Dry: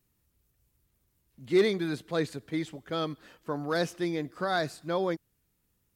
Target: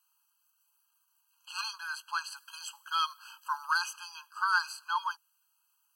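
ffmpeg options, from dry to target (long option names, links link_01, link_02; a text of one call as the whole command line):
ffmpeg -i in.wav -filter_complex "[0:a]asettb=1/sr,asplit=3[link_01][link_02][link_03];[link_01]atrim=end=2.364[link_04];[link_02]atrim=start=2.36:end=3.71,asetpts=PTS-STARTPTS,afade=type=in:duration=0.004:curve=qsin,afade=type=out:start_time=1.346:duration=0.004:curve=qsin,highshelf=frequency=5100:gain=7.5[link_05];[link_03]atrim=start=3.706[link_06];[link_04][link_05]acrossfade=duration=0.004:curve1=hsin:curve2=qsin[link_07];[link_07][link_06]acrossfade=duration=0.004:curve1=qsin:curve2=hsin,afftfilt=real='re*eq(mod(floor(b*sr/1024/820),2),1)':imag='im*eq(mod(floor(b*sr/1024/820),2),1)':win_size=1024:overlap=0.75,volume=7dB" out.wav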